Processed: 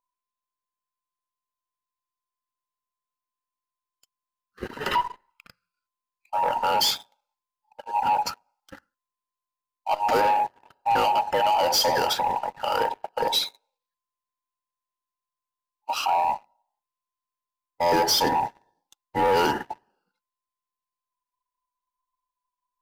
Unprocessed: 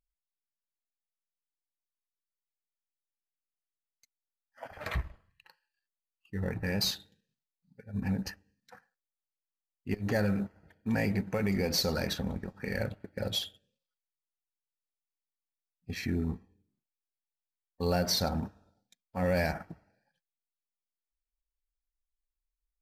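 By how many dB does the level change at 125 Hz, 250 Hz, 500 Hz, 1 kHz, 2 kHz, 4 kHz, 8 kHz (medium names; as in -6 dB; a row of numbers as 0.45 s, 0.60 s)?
-9.5 dB, -3.0 dB, +8.0 dB, +21.5 dB, +6.5 dB, +8.5 dB, +8.5 dB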